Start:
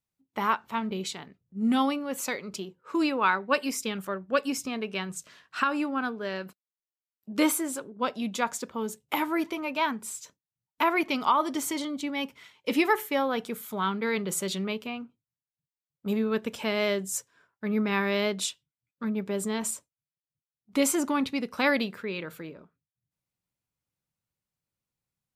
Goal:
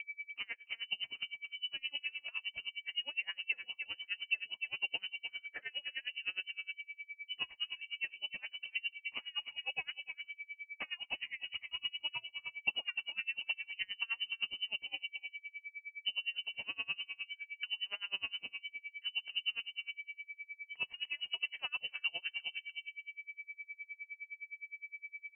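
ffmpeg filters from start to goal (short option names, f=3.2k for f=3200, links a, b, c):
-filter_complex "[0:a]aeval=exprs='val(0)+0.0158*sin(2*PI*900*n/s)':c=same,acrossover=split=110|1600[a][b][c];[b]alimiter=limit=-21.5dB:level=0:latency=1[d];[a][d][c]amix=inputs=3:normalize=0,acompressor=threshold=-35dB:ratio=6,aeval=exprs='val(0)*gte(abs(val(0)),0.00133)':c=same,equalizer=f=125:t=o:w=1:g=9,equalizer=f=250:t=o:w=1:g=-8,equalizer=f=500:t=o:w=1:g=7,equalizer=f=1k:t=o:w=1:g=-5,equalizer=f=2k:t=o:w=1:g=-11,asplit=2[e][f];[f]adelay=295,lowpass=f=960:p=1,volume=-5dB,asplit=2[g][h];[h]adelay=295,lowpass=f=960:p=1,volume=0.18,asplit=2[i][j];[j]adelay=295,lowpass=f=960:p=1,volume=0.18[k];[g][i][k]amix=inputs=3:normalize=0[l];[e][l]amix=inputs=2:normalize=0,lowpass=f=2.7k:t=q:w=0.5098,lowpass=f=2.7k:t=q:w=0.6013,lowpass=f=2.7k:t=q:w=0.9,lowpass=f=2.7k:t=q:w=2.563,afreqshift=-3200,aeval=exprs='val(0)*pow(10,-31*(0.5-0.5*cos(2*PI*9.7*n/s))/20)':c=same,volume=5dB"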